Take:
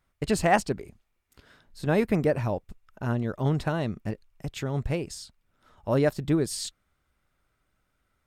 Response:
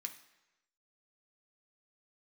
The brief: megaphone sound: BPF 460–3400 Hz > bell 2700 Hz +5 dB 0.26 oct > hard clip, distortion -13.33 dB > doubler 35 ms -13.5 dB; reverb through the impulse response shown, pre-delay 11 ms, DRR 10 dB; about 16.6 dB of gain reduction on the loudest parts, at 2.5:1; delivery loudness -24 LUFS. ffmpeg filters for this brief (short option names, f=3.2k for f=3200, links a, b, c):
-filter_complex "[0:a]acompressor=threshold=-44dB:ratio=2.5,asplit=2[a][b];[1:a]atrim=start_sample=2205,adelay=11[c];[b][c]afir=irnorm=-1:irlink=0,volume=-7dB[d];[a][d]amix=inputs=2:normalize=0,highpass=460,lowpass=3.4k,equalizer=f=2.7k:t=o:w=0.26:g=5,asoftclip=type=hard:threshold=-36.5dB,asplit=2[e][f];[f]adelay=35,volume=-13.5dB[g];[e][g]amix=inputs=2:normalize=0,volume=24dB"